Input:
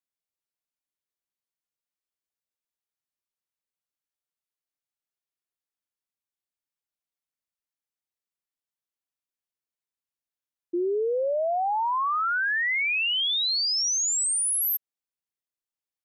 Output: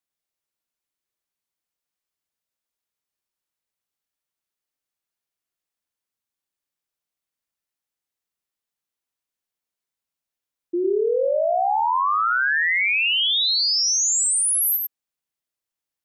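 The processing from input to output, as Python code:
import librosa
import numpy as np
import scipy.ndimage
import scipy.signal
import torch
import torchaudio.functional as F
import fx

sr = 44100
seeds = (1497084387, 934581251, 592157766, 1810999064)

y = x + 10.0 ** (-4.0 / 20.0) * np.pad(x, (int(99 * sr / 1000.0), 0))[:len(x)]
y = F.gain(torch.from_numpy(y), 3.5).numpy()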